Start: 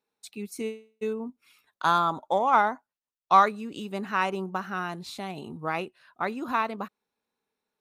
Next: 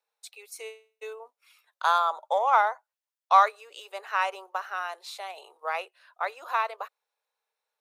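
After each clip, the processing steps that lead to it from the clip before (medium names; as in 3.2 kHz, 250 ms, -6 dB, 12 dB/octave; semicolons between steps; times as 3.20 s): steep high-pass 490 Hz 48 dB/octave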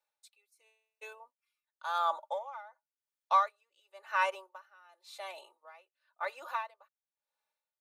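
comb 3.4 ms, depth 70%; logarithmic tremolo 0.94 Hz, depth 25 dB; trim -4 dB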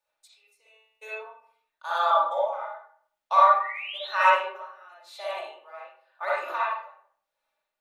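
painted sound rise, 3.60–4.08 s, 1.8–4.3 kHz -45 dBFS; reverberation RT60 0.55 s, pre-delay 15 ms, DRR -8 dB; trim +1.5 dB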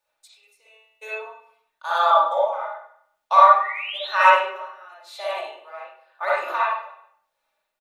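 feedback delay 97 ms, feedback 45%, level -18 dB; trim +5 dB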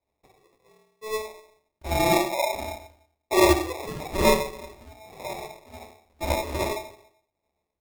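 feedback comb 290 Hz, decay 0.18 s, harmonics odd, mix 80%; sample-and-hold 29×; trim +6.5 dB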